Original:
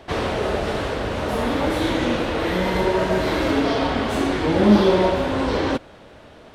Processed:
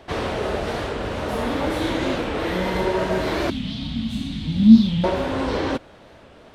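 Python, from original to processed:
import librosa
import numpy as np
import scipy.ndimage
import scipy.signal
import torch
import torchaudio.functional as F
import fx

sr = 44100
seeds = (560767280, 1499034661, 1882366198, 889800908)

y = fx.curve_eq(x, sr, hz=(110.0, 220.0, 390.0, 660.0, 1600.0, 3700.0, 5400.0), db=(0, 8, -30, -23, -20, 3, -7), at=(3.51, 5.04))
y = fx.record_warp(y, sr, rpm=45.0, depth_cents=160.0)
y = F.gain(torch.from_numpy(y), -2.0).numpy()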